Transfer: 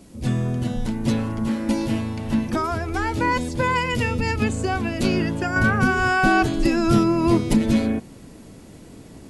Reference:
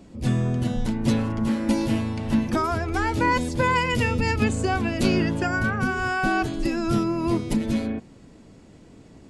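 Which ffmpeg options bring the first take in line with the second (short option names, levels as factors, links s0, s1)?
-af "agate=range=0.0891:threshold=0.02,asetnsamples=n=441:p=0,asendcmd='5.56 volume volume -5.5dB',volume=1"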